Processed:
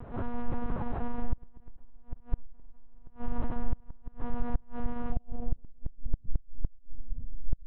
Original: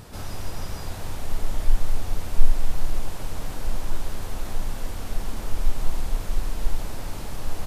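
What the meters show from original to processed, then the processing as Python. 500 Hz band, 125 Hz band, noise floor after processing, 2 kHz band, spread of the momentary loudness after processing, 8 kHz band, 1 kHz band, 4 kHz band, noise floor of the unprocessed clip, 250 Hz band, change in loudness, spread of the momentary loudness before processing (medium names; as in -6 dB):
-4.5 dB, -6.5 dB, -52 dBFS, -11.0 dB, 12 LU, no reading, -4.0 dB, under -25 dB, -34 dBFS, +1.0 dB, -6.0 dB, 6 LU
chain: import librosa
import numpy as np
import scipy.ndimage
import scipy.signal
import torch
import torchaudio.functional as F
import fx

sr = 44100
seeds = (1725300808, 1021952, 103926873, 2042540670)

y = fx.filter_sweep_lowpass(x, sr, from_hz=1100.0, to_hz=110.0, start_s=5.09, end_s=6.42, q=0.92)
y = fx.spec_repair(y, sr, seeds[0], start_s=5.15, length_s=0.37, low_hz=840.0, high_hz=2400.0, source='after')
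y = fx.lpc_monotone(y, sr, seeds[1], pitch_hz=240.0, order=8)
y = fx.gate_flip(y, sr, shuts_db=-15.0, range_db=-27)
y = y * 10.0 ** (1.0 / 20.0)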